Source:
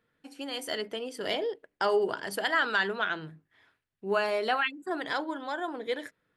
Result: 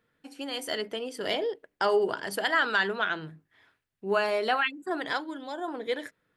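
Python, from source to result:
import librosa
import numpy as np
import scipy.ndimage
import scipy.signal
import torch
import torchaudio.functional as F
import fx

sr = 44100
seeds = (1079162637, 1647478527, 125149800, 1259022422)

y = fx.peak_eq(x, sr, hz=fx.line((5.17, 510.0), (5.66, 2400.0)), db=-11.5, octaves=1.4, at=(5.17, 5.66), fade=0.02)
y = F.gain(torch.from_numpy(y), 1.5).numpy()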